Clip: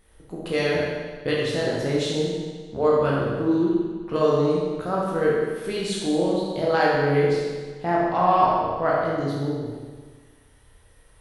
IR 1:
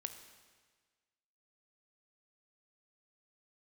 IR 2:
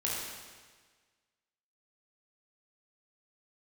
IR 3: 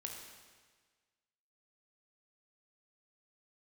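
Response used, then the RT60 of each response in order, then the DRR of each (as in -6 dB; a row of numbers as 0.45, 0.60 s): 2; 1.5, 1.5, 1.5 s; 7.5, -6.0, 0.5 dB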